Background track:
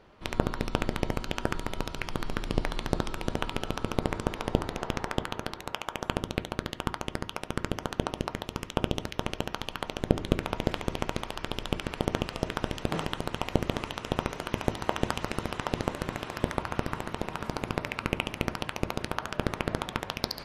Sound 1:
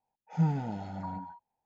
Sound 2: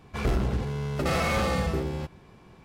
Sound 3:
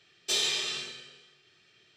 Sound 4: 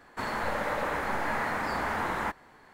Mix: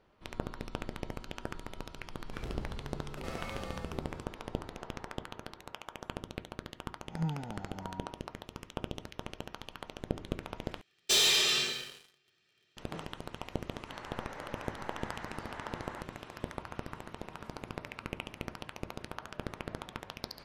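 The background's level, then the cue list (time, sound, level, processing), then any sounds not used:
background track -10.5 dB
2.18 s: add 2 -16.5 dB
6.82 s: add 1 -7.5 dB + reverse spectral sustain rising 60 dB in 0.30 s
10.81 s: replace with 3 -4.5 dB + waveshaping leveller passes 3
13.71 s: add 4 -15 dB + distance through air 71 m

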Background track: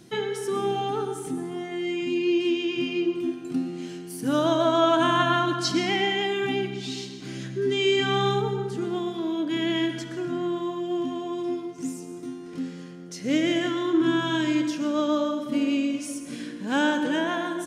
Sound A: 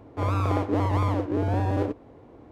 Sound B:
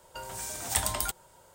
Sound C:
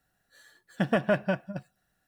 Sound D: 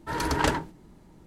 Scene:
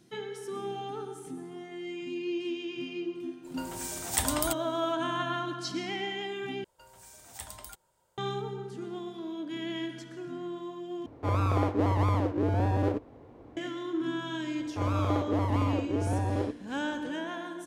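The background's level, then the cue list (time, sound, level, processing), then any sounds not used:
background track -10 dB
3.42 s: add B -0.5 dB, fades 0.05 s
6.64 s: replace with B -15 dB
11.06 s: replace with A -2 dB
14.59 s: add A -4.5 dB
not used: C, D

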